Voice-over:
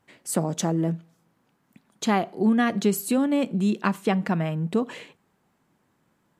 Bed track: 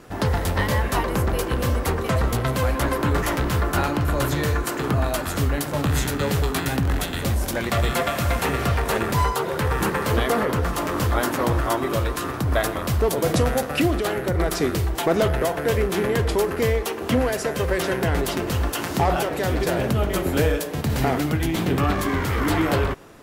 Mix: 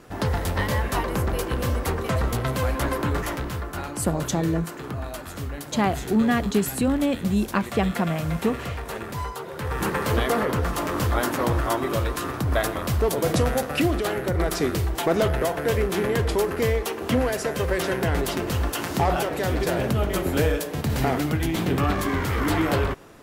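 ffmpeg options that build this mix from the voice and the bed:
-filter_complex "[0:a]adelay=3700,volume=0dB[a];[1:a]volume=6dB,afade=t=out:st=2.97:d=0.7:silence=0.421697,afade=t=in:st=9.54:d=0.41:silence=0.375837[b];[a][b]amix=inputs=2:normalize=0"

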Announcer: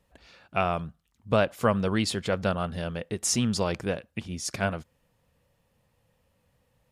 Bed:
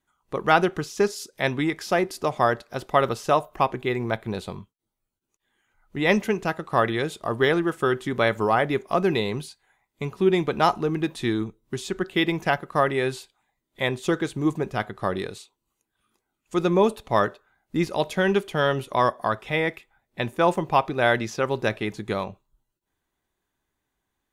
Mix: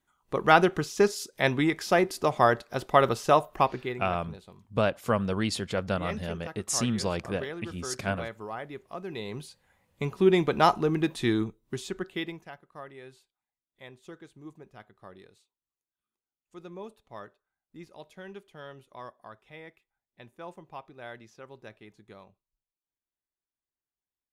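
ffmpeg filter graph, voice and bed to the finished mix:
-filter_complex "[0:a]adelay=3450,volume=-2.5dB[a];[1:a]volume=15dB,afade=t=out:st=3.54:d=0.52:silence=0.158489,afade=t=in:st=9.08:d=0.86:silence=0.16788,afade=t=out:st=11.4:d=1.07:silence=0.0841395[b];[a][b]amix=inputs=2:normalize=0"

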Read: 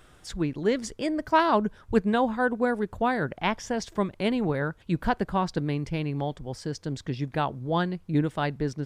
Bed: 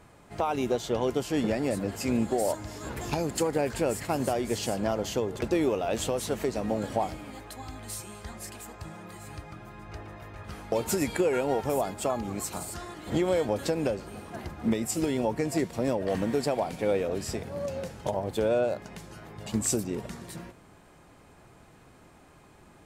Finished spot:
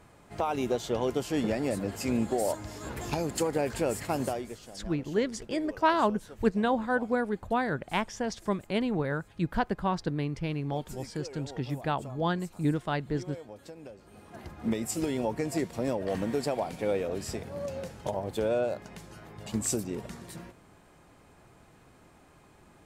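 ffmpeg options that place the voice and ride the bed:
-filter_complex "[0:a]adelay=4500,volume=-3dB[a];[1:a]volume=14dB,afade=t=out:st=4.2:d=0.38:silence=0.149624,afade=t=in:st=13.94:d=0.83:silence=0.16788[b];[a][b]amix=inputs=2:normalize=0"

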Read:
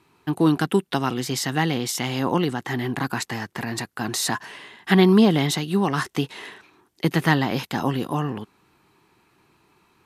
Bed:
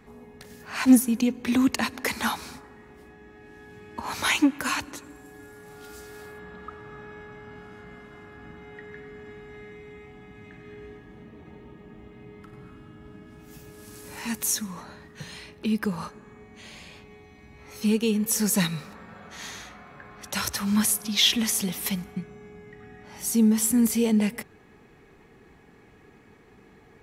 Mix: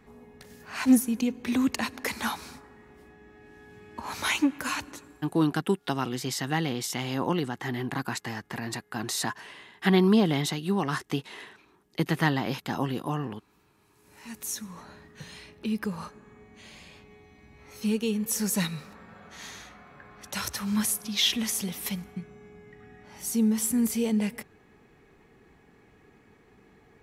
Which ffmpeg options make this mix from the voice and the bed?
-filter_complex "[0:a]adelay=4950,volume=-5.5dB[a];[1:a]volume=16dB,afade=t=out:st=4.92:d=0.53:silence=0.1,afade=t=in:st=13.95:d=0.96:silence=0.105925[b];[a][b]amix=inputs=2:normalize=0"

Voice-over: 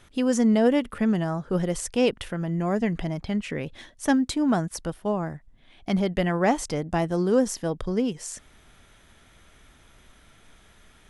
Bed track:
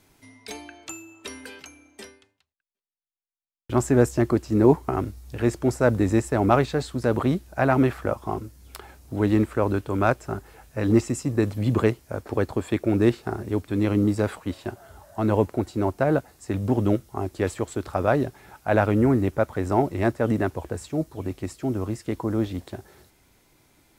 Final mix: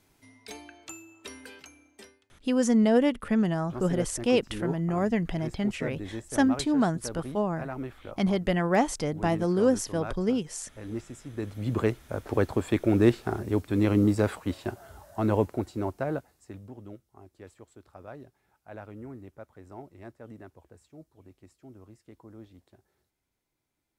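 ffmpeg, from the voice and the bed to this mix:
-filter_complex "[0:a]adelay=2300,volume=-1.5dB[a];[1:a]volume=10dB,afade=t=out:st=1.79:d=0.73:silence=0.281838,afade=t=in:st=11.26:d=1.07:silence=0.16788,afade=t=out:st=14.85:d=1.87:silence=0.0794328[b];[a][b]amix=inputs=2:normalize=0"

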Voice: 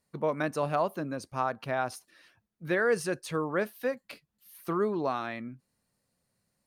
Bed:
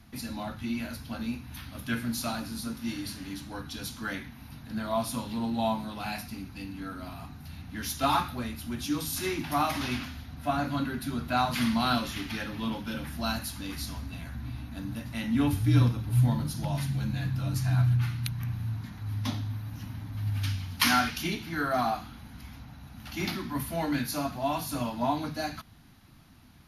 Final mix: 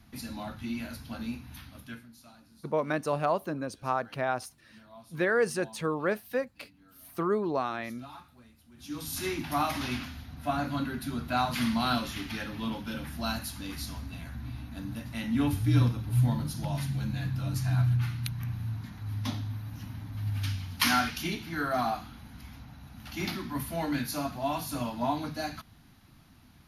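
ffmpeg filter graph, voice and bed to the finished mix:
-filter_complex "[0:a]adelay=2500,volume=0.5dB[a];[1:a]volume=18dB,afade=t=out:st=1.46:d=0.62:silence=0.105925,afade=t=in:st=8.74:d=0.46:silence=0.0944061[b];[a][b]amix=inputs=2:normalize=0"

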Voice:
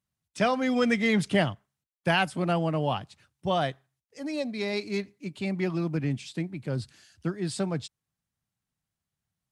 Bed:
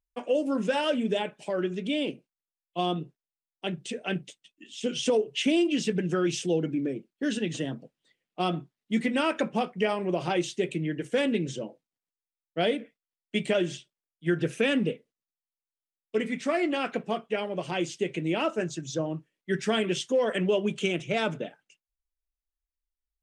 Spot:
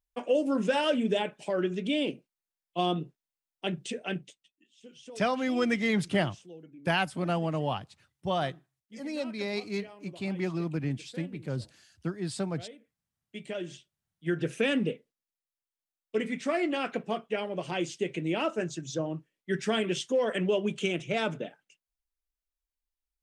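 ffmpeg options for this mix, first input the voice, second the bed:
-filter_complex "[0:a]adelay=4800,volume=-3dB[a];[1:a]volume=19.5dB,afade=t=out:st=3.83:d=0.86:silence=0.0841395,afade=t=in:st=13.12:d=1.48:silence=0.105925[b];[a][b]amix=inputs=2:normalize=0"

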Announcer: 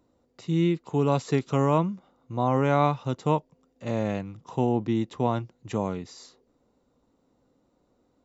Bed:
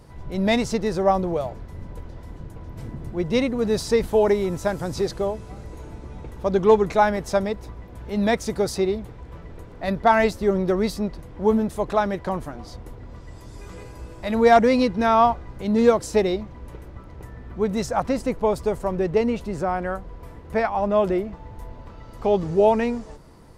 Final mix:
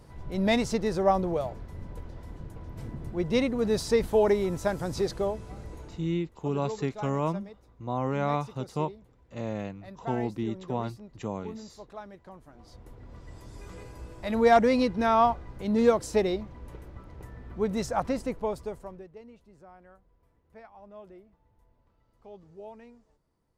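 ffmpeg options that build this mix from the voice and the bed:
-filter_complex "[0:a]adelay=5500,volume=-6dB[a];[1:a]volume=12.5dB,afade=t=out:st=5.71:d=0.54:silence=0.133352,afade=t=in:st=12.43:d=0.88:silence=0.149624,afade=t=out:st=18.02:d=1.07:silence=0.0749894[b];[a][b]amix=inputs=2:normalize=0"

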